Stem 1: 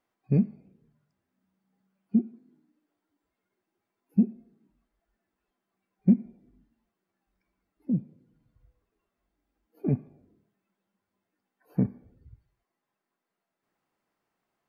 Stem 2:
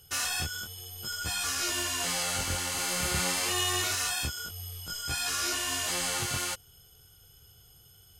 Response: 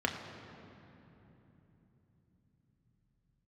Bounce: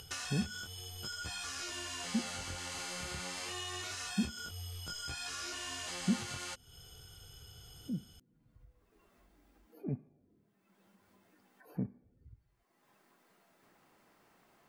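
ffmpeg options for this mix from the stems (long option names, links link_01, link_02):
-filter_complex "[0:a]volume=-11.5dB[link_01];[1:a]lowpass=7600,acompressor=threshold=-39dB:ratio=6,volume=-0.5dB[link_02];[link_01][link_02]amix=inputs=2:normalize=0,acompressor=mode=upward:threshold=-46dB:ratio=2.5"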